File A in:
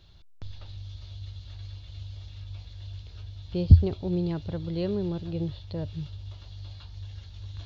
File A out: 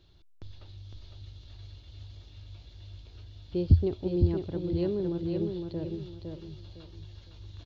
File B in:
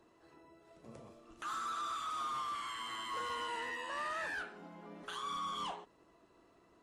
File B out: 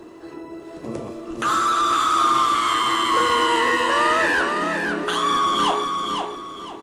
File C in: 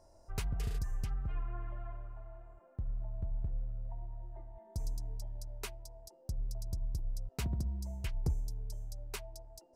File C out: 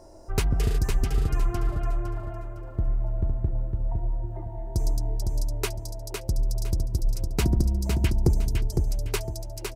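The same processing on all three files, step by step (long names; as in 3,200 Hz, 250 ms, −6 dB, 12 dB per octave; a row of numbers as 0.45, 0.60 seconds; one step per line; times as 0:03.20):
parametric band 340 Hz +9 dB 0.74 octaves
on a send: repeating echo 508 ms, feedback 30%, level −5 dB
on the sum: normalise the peak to −9 dBFS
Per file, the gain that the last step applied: −6.0, +19.5, +12.0 decibels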